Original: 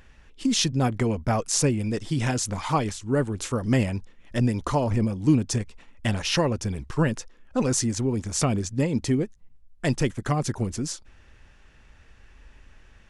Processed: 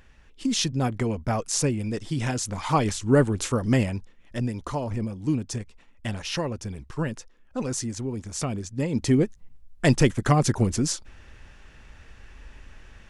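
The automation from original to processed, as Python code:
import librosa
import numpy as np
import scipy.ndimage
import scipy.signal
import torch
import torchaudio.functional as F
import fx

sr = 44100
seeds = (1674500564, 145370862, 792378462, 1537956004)

y = fx.gain(x, sr, db=fx.line((2.53, -2.0), (3.04, 6.0), (4.49, -5.5), (8.7, -5.5), (9.23, 5.0)))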